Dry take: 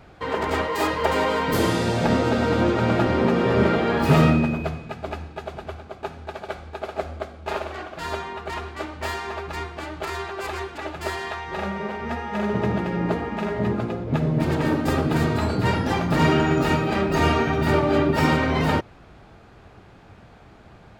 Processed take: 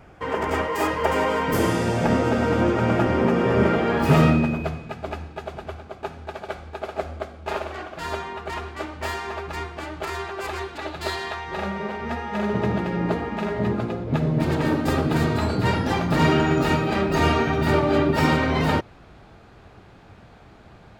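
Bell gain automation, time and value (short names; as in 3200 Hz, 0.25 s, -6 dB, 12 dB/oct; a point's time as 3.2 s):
bell 4000 Hz 0.38 oct
3.61 s -10.5 dB
4.32 s -1.5 dB
10.43 s -1.5 dB
11.1 s +10.5 dB
11.38 s +1.5 dB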